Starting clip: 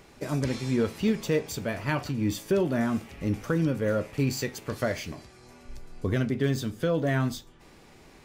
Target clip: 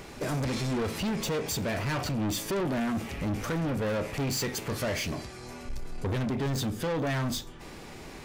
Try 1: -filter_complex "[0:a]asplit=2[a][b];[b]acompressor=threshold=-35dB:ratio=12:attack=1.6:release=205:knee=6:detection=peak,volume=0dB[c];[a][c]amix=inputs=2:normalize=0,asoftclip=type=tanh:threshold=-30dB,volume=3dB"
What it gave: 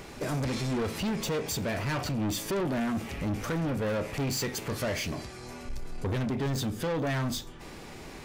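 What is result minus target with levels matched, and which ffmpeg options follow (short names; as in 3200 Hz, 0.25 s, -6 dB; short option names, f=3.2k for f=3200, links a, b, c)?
compressor: peak gain reduction +6 dB
-filter_complex "[0:a]asplit=2[a][b];[b]acompressor=threshold=-28.5dB:ratio=12:attack=1.6:release=205:knee=6:detection=peak,volume=0dB[c];[a][c]amix=inputs=2:normalize=0,asoftclip=type=tanh:threshold=-30dB,volume=3dB"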